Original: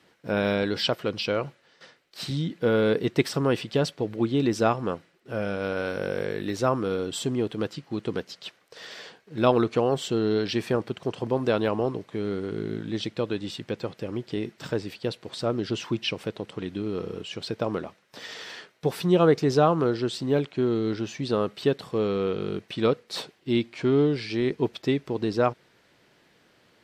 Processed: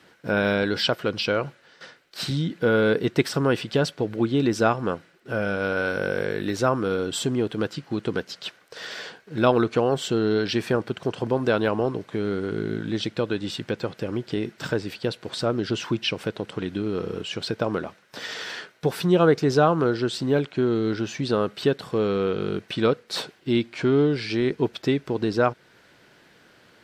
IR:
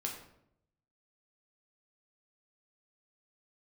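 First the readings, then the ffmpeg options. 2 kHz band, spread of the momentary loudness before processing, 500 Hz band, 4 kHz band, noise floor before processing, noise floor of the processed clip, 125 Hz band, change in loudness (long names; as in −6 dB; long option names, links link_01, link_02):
+6.0 dB, 12 LU, +2.0 dB, +3.0 dB, −62 dBFS, −57 dBFS, +2.0 dB, +2.0 dB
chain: -filter_complex "[0:a]equalizer=frequency=1500:width_type=o:width=0.22:gain=6.5,asplit=2[link_01][link_02];[link_02]acompressor=threshold=-32dB:ratio=6,volume=-1.5dB[link_03];[link_01][link_03]amix=inputs=2:normalize=0"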